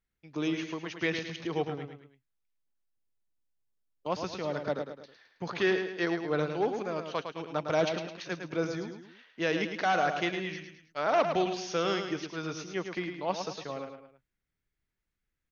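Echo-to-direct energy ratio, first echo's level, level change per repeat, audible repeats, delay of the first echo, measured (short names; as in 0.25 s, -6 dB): -6.0 dB, -7.0 dB, -7.5 dB, 3, 0.107 s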